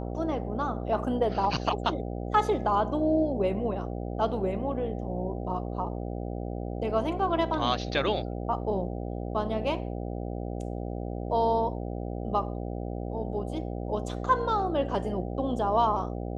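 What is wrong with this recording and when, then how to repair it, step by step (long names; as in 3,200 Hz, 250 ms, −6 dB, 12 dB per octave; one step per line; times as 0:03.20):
mains buzz 60 Hz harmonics 13 −34 dBFS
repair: hum removal 60 Hz, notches 13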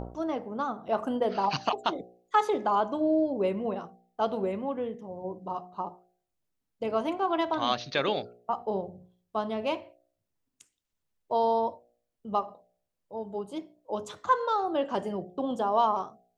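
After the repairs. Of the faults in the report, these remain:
none of them is left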